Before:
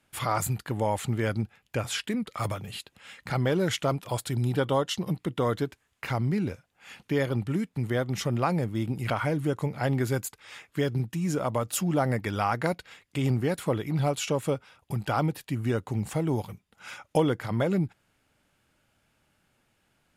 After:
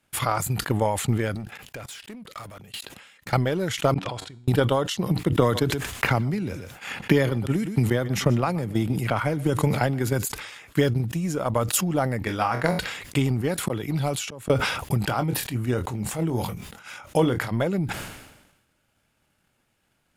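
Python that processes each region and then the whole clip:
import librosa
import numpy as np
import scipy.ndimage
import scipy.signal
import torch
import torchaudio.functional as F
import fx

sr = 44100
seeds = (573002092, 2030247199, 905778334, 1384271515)

y = fx.chain(x, sr, fx.low_shelf(hz=110.0, db=-8.5),
    fx.level_steps(step_db=20),
    fx.clip_hard(threshold_db=-37.5), at=(1.35, 3.33))
y = fx.chain(y, sr, fx.lowpass(hz=4200.0, slope=12),
    fx.level_steps(step_db=23),
    fx.comb_fb(f0_hz=94.0, decay_s=1.2, harmonics='all', damping=0.0, mix_pct=50), at=(3.94, 4.48))
y = fx.chain(y, sr, fx.echo_single(ms=124, db=-19.5),
    fx.band_squash(depth_pct=70), at=(5.32, 10.25))
y = fx.chain(y, sr, fx.high_shelf(hz=8300.0, db=-4.0),
    fx.room_flutter(wall_m=4.0, rt60_s=0.22), at=(12.19, 12.79))
y = fx.chain(y, sr, fx.auto_swell(attack_ms=378.0),
    fx.band_squash(depth_pct=40), at=(13.63, 14.5))
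y = fx.chain(y, sr, fx.transient(attack_db=-7, sustain_db=6),
    fx.doubler(ms=24.0, db=-9), at=(15.06, 17.51))
y = fx.high_shelf(y, sr, hz=7900.0, db=3.5)
y = fx.transient(y, sr, attack_db=10, sustain_db=-2)
y = fx.sustainer(y, sr, db_per_s=55.0)
y = y * librosa.db_to_amplitude(-1.5)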